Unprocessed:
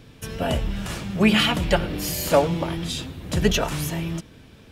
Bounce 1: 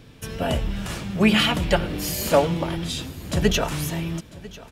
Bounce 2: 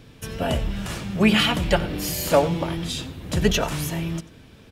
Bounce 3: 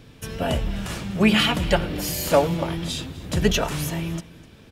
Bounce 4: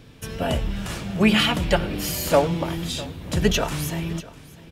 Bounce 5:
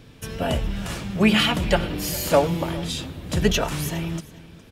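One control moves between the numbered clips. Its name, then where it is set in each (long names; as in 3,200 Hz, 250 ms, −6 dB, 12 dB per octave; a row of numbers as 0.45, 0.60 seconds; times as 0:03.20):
repeating echo, delay time: 996, 91, 252, 652, 412 milliseconds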